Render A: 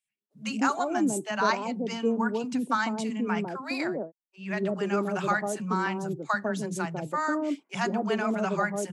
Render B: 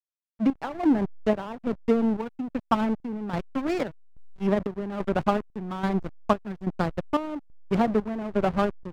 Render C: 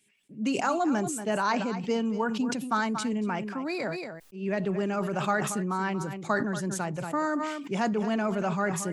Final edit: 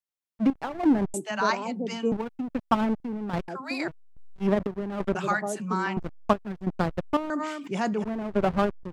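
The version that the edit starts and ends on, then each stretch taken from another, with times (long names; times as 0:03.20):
B
0:01.14–0:02.12: punch in from A
0:03.48–0:03.88: punch in from A
0:05.15–0:05.97: punch in from A
0:07.30–0:08.04: punch in from C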